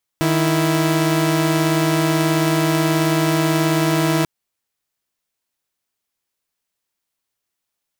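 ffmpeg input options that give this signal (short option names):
-f lavfi -i "aevalsrc='0.168*((2*mod(155.56*t,1)-1)+(2*mod(329.63*t,1)-1))':d=4.04:s=44100"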